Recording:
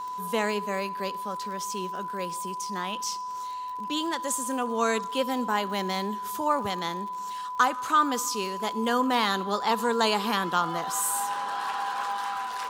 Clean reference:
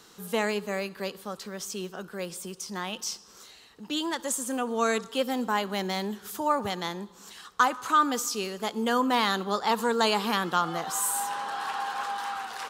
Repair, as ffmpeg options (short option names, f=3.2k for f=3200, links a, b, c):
-af "adeclick=t=4,bandreject=f=1k:w=30"